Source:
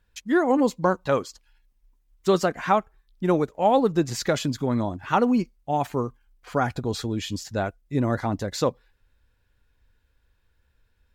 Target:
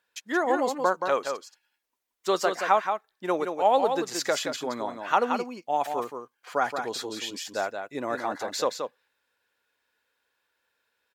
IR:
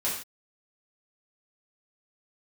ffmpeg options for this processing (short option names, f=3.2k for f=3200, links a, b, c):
-filter_complex "[0:a]highpass=510,asplit=2[a][b];[b]aecho=0:1:175:0.473[c];[a][c]amix=inputs=2:normalize=0"